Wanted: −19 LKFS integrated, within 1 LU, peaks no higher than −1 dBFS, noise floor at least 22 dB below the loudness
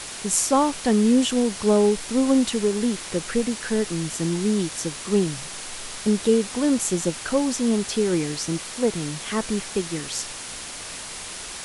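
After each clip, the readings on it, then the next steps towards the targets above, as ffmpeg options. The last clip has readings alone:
background noise floor −36 dBFS; target noise floor −46 dBFS; integrated loudness −23.5 LKFS; sample peak −4.0 dBFS; target loudness −19.0 LKFS
→ -af "afftdn=noise_reduction=10:noise_floor=-36"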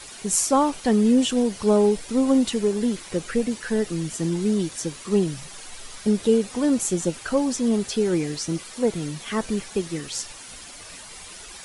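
background noise floor −41 dBFS; target noise floor −46 dBFS
→ -af "afftdn=noise_reduction=6:noise_floor=-41"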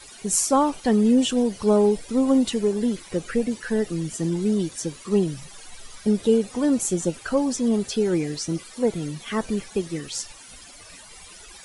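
background noise floor −45 dBFS; target noise floor −46 dBFS
→ -af "afftdn=noise_reduction=6:noise_floor=-45"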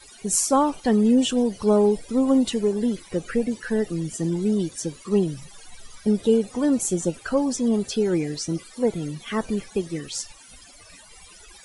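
background noise floor −48 dBFS; integrated loudness −23.5 LKFS; sample peak −4.5 dBFS; target loudness −19.0 LKFS
→ -af "volume=4.5dB,alimiter=limit=-1dB:level=0:latency=1"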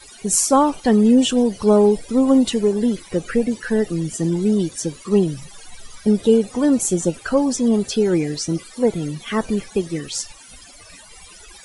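integrated loudness −19.0 LKFS; sample peak −1.0 dBFS; background noise floor −44 dBFS

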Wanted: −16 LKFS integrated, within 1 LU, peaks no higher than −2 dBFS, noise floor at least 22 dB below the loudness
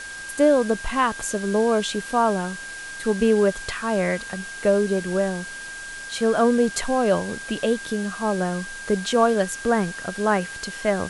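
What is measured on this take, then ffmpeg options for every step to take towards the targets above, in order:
interfering tone 1,600 Hz; level of the tone −34 dBFS; background noise floor −36 dBFS; target noise floor −45 dBFS; integrated loudness −23.0 LKFS; sample peak −5.5 dBFS; target loudness −16.0 LKFS
→ -af "bandreject=frequency=1600:width=30"
-af "afftdn=noise_reduction=9:noise_floor=-36"
-af "volume=7dB,alimiter=limit=-2dB:level=0:latency=1"

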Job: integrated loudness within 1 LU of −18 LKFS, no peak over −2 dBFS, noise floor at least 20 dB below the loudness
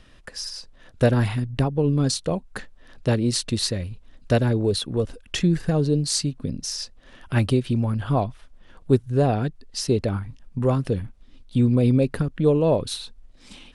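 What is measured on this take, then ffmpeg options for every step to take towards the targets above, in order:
integrated loudness −23.5 LKFS; sample peak −5.5 dBFS; target loudness −18.0 LKFS
→ -af "volume=5.5dB,alimiter=limit=-2dB:level=0:latency=1"

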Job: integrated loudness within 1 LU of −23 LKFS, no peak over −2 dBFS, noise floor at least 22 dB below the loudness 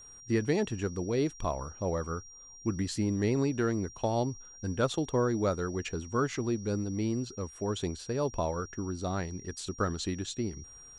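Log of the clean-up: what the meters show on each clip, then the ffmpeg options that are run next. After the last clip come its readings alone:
interfering tone 5,700 Hz; level of the tone −49 dBFS; integrated loudness −32.5 LKFS; sample peak −16.0 dBFS; target loudness −23.0 LKFS
→ -af "bandreject=frequency=5700:width=30"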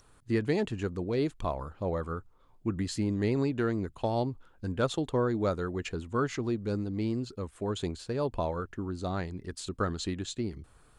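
interfering tone none found; integrated loudness −32.5 LKFS; sample peak −16.5 dBFS; target loudness −23.0 LKFS
→ -af "volume=9.5dB"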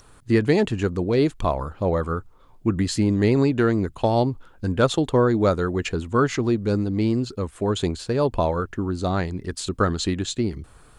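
integrated loudness −23.0 LKFS; sample peak −7.0 dBFS; background noise floor −51 dBFS

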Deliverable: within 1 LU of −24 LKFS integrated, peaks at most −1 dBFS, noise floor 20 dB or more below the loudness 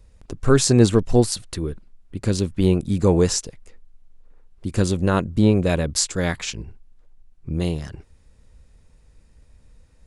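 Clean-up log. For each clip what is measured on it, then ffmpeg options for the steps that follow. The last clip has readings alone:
integrated loudness −21.0 LKFS; sample peak −1.0 dBFS; target loudness −24.0 LKFS
→ -af "volume=-3dB"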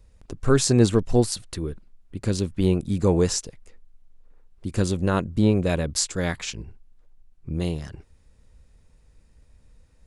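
integrated loudness −24.0 LKFS; sample peak −4.0 dBFS; background noise floor −58 dBFS

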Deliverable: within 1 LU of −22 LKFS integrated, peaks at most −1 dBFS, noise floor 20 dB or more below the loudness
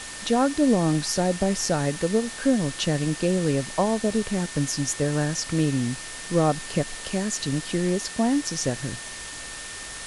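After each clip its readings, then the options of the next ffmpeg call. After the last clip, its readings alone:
interfering tone 1,800 Hz; level of the tone −42 dBFS; background noise floor −37 dBFS; target noise floor −45 dBFS; integrated loudness −25.0 LKFS; sample peak −9.5 dBFS; target loudness −22.0 LKFS
→ -af "bandreject=frequency=1800:width=30"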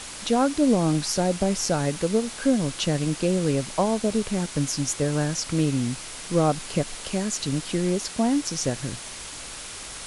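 interfering tone none found; background noise floor −38 dBFS; target noise floor −45 dBFS
→ -af "afftdn=noise_reduction=7:noise_floor=-38"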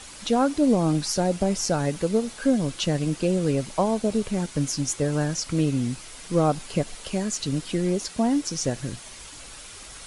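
background noise floor −43 dBFS; target noise floor −45 dBFS
→ -af "afftdn=noise_reduction=6:noise_floor=-43"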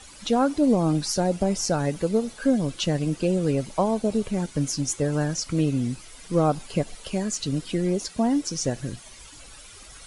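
background noise floor −46 dBFS; integrated loudness −25.0 LKFS; sample peak −9.5 dBFS; target loudness −22.0 LKFS
→ -af "volume=3dB"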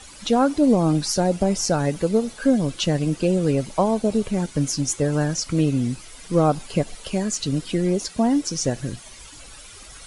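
integrated loudness −22.0 LKFS; sample peak −6.5 dBFS; background noise floor −43 dBFS

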